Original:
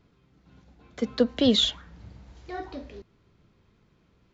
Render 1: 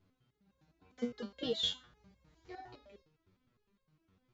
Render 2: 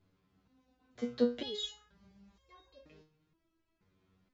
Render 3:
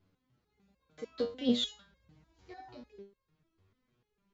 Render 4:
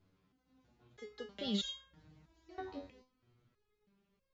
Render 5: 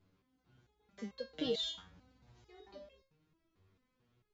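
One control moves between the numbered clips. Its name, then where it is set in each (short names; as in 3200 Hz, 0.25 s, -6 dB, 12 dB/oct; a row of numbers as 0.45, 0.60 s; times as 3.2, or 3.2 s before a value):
stepped resonator, rate: 9.8, 2.1, 6.7, 3.1, 4.5 Hz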